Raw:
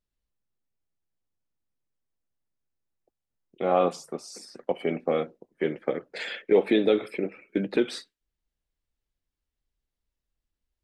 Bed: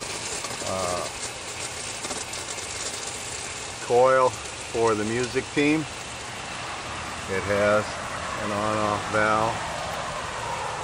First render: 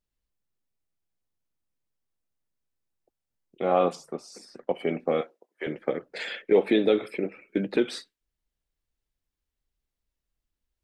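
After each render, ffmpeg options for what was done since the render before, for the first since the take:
-filter_complex "[0:a]asettb=1/sr,asplit=3[a][b][c];[a]atrim=end=3.954[d];[b]atrim=start=3.95:end=4.71,asetpts=PTS-STARTPTS,afade=t=in:d=0.004:c=qsin,afade=t=out:st=0.756:d=0.004:c=qsin,highshelf=f=4.6k:g=-7[e];[c]atrim=start=4.706[f];[d][e]acrossfade=d=0.004:c1=hsin:c2=qsin[g];[g][f]acrossfade=d=0.004:c1=qsin:c2=hsin,asettb=1/sr,asplit=3[h][i][j];[h]atrim=end=5.214[k];[i]atrim=start=5.21:end=5.67,asetpts=PTS-STARTPTS,afade=t=in:d=0.004:c=qsin,afade=t=out:st=0.456:d=0.004:c=qsin,highpass=630[l];[j]atrim=start=5.666[m];[k][l]acrossfade=d=0.004:c1=hsin:c2=qsin[n];[n][m]acrossfade=d=0.004:c1=qsin:c2=hsin"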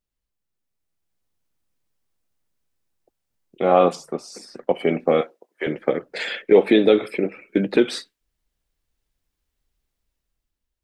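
-af "dynaudnorm=f=390:g=5:m=8dB"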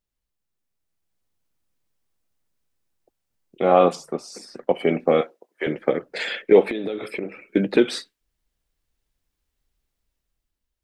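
-filter_complex "[0:a]asettb=1/sr,asplit=3[a][b][c];[a]atrim=end=6.684[d];[b]atrim=start=6.68:end=7.45,asetpts=PTS-STARTPTS,afade=t=in:d=0.004:c=qsin,afade=t=out:st=0.766:d=0.004:c=qsin,acompressor=threshold=-23dB:ratio=16:attack=3.2:release=140:knee=1:detection=peak[e];[c]atrim=start=7.446[f];[d][e]acrossfade=d=0.004:c1=hsin:c2=qsin[g];[g][f]acrossfade=d=0.004:c1=qsin:c2=hsin"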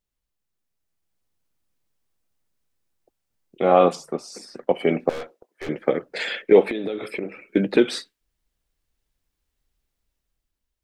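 -filter_complex "[0:a]asettb=1/sr,asplit=3[a][b][c];[a]atrim=end=5.094[d];[b]atrim=start=5.09:end=5.69,asetpts=PTS-STARTPTS,afade=t=in:d=0.004:c=qsin,afade=t=out:st=0.596:d=0.004:c=qsin,aeval=exprs='(tanh(31.6*val(0)+0.45)-tanh(0.45))/31.6':c=same[e];[c]atrim=start=5.686[f];[d][e]acrossfade=d=0.004:c1=hsin:c2=qsin[g];[g][f]acrossfade=d=0.004:c1=qsin:c2=hsin"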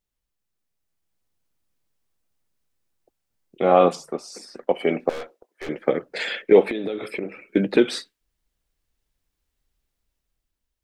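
-filter_complex "[0:a]asettb=1/sr,asplit=3[a][b][c];[a]atrim=end=4.104[d];[b]atrim=start=4.1:end=5.86,asetpts=PTS-STARTPTS,afade=t=in:d=0.004:c=qsin,afade=t=out:st=1.756:d=0.004:c=qsin,equalizer=f=120:w=0.73:g=-6[e];[c]atrim=start=5.856[f];[d][e]acrossfade=d=0.004:c1=hsin:c2=qsin[g];[g][f]acrossfade=d=0.004:c1=qsin:c2=hsin"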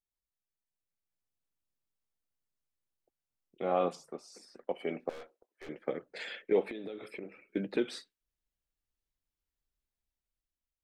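-af "volume=-14dB"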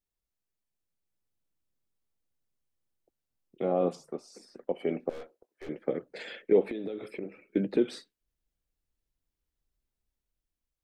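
-filter_complex "[0:a]acrossover=split=580[a][b];[a]acontrast=71[c];[b]alimiter=level_in=9.5dB:limit=-24dB:level=0:latency=1:release=67,volume=-9.5dB[d];[c][d]amix=inputs=2:normalize=0"

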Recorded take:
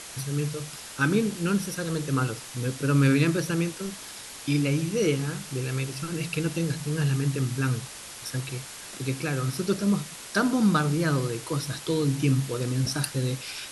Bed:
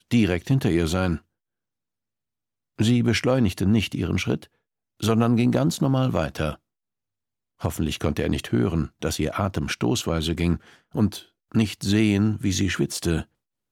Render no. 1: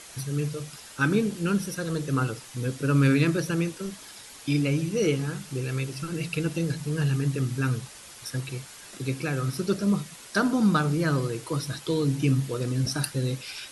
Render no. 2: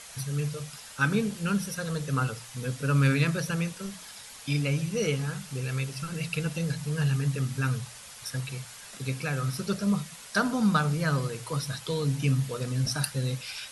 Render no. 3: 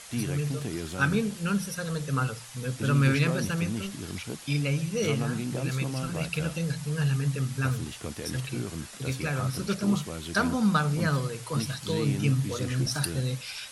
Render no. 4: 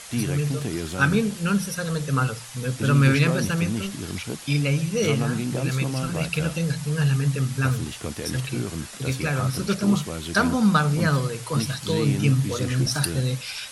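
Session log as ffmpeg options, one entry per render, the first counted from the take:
-af "afftdn=nr=6:nf=-42"
-af "equalizer=f=330:t=o:w=0.47:g=-15,bandreject=f=60:t=h:w=6,bandreject=f=120:t=h:w=6,bandreject=f=180:t=h:w=6"
-filter_complex "[1:a]volume=-13dB[a];[0:a][a]amix=inputs=2:normalize=0"
-af "volume=5dB"

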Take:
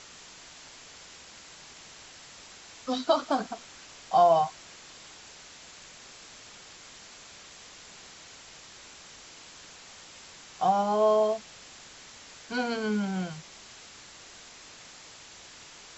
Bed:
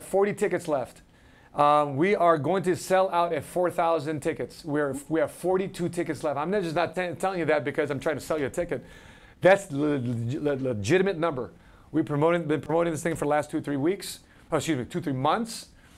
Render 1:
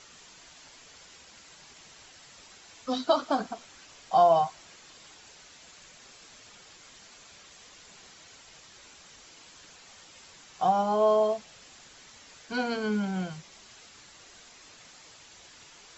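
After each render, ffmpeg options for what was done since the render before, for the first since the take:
-af "afftdn=nr=6:nf=-50"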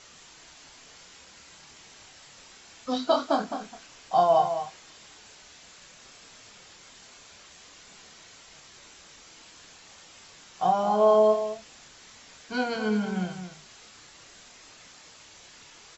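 -filter_complex "[0:a]asplit=2[a][b];[b]adelay=28,volume=-6dB[c];[a][c]amix=inputs=2:normalize=0,asplit=2[d][e];[e]adelay=209.9,volume=-9dB,highshelf=f=4k:g=-4.72[f];[d][f]amix=inputs=2:normalize=0"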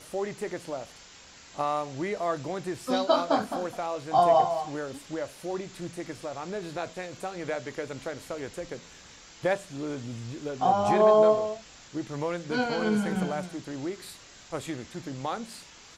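-filter_complex "[1:a]volume=-8.5dB[a];[0:a][a]amix=inputs=2:normalize=0"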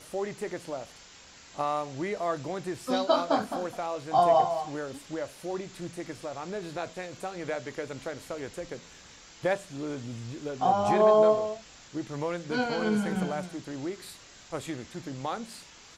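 -af "volume=-1dB"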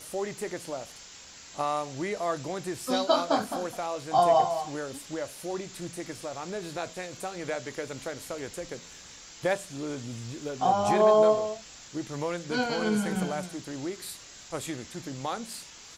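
-af "highshelf=f=5.2k:g=9.5"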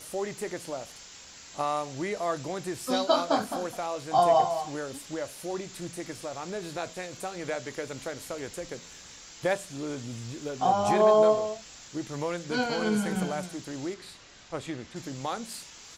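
-filter_complex "[0:a]asettb=1/sr,asplit=3[a][b][c];[a]atrim=end=13.944[d];[b]atrim=start=13.94:end=14.96,asetpts=PTS-STARTPTS,afade=t=in:d=0.004:c=qsin,afade=t=out:st=1.016:d=0.004:c=qsin,adynamicsmooth=sensitivity=1:basefreq=5.1k[e];[c]atrim=start=14.956[f];[d][e]acrossfade=d=0.004:c1=hsin:c2=qsin[g];[g][f]acrossfade=d=0.004:c1=qsin:c2=hsin"

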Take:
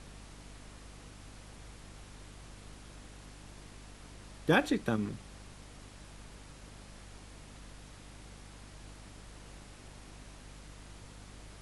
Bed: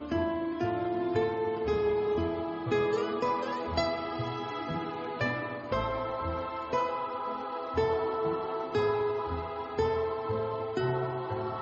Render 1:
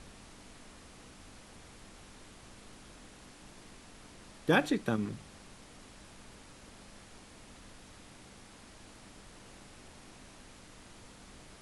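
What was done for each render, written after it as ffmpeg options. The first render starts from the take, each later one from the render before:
-af "bandreject=f=50:t=h:w=4,bandreject=f=100:t=h:w=4,bandreject=f=150:t=h:w=4"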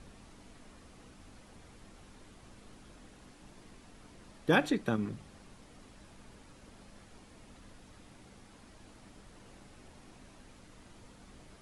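-af "afftdn=nr=6:nf=-55"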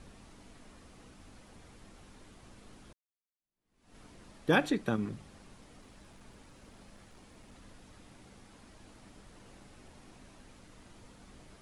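-filter_complex "[0:a]asettb=1/sr,asplit=3[a][b][c];[a]atrim=end=5.814[d];[b]atrim=start=5.81:end=7.52,asetpts=PTS-STARTPTS,afade=t=in:d=0.004:c=qsin,afade=t=out:st=1.706:d=0.004:c=qsin,aeval=exprs='clip(val(0),-1,0.00282)':c=same[e];[c]atrim=start=7.516[f];[d][e]acrossfade=d=0.004:c1=hsin:c2=qsin[g];[g][f]acrossfade=d=0.004:c1=qsin:c2=hsin,asplit=2[h][i];[h]atrim=end=2.93,asetpts=PTS-STARTPTS,afade=t=out:st=2.926:d=0.004:c=hsin[j];[i]atrim=start=2.93,asetpts=PTS-STARTPTS,afade=t=in:d=1.03:c=exp[k];[j][k]concat=n=2:v=0:a=1"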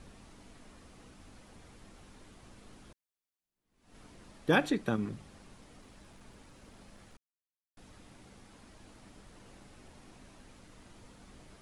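-filter_complex "[0:a]asplit=3[a][b][c];[a]atrim=end=7.17,asetpts=PTS-STARTPTS,afade=t=out:st=7.166:d=0.004:c=hsin[d];[b]atrim=start=7.17:end=7.77,asetpts=PTS-STARTPTS,volume=0[e];[c]atrim=start=7.77,asetpts=PTS-STARTPTS,afade=t=in:d=0.004:c=hsin[f];[d][e][f]concat=n=3:v=0:a=1"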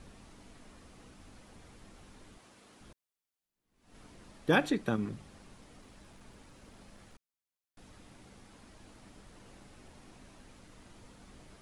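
-filter_complex "[0:a]asettb=1/sr,asplit=3[a][b][c];[a]atrim=end=2.384[d];[b]atrim=start=2.38:end=2.81,asetpts=PTS-STARTPTS,afade=t=in:d=0.004:c=qsin,afade=t=out:st=0.426:d=0.004:c=qsin,highpass=f=350:p=1[e];[c]atrim=start=2.806[f];[d][e]acrossfade=d=0.004:c1=hsin:c2=qsin[g];[g][f]acrossfade=d=0.004:c1=qsin:c2=hsin"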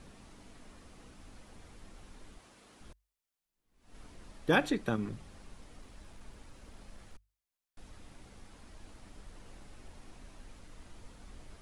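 -af "bandreject=f=50:t=h:w=6,bandreject=f=100:t=h:w=6,asubboost=boost=2.5:cutoff=84"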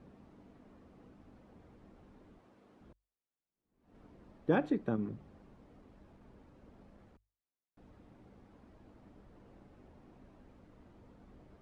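-af "bandpass=f=270:t=q:w=0.5:csg=0"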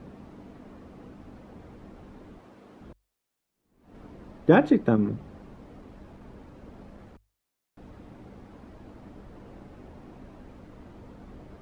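-af "volume=12dB"

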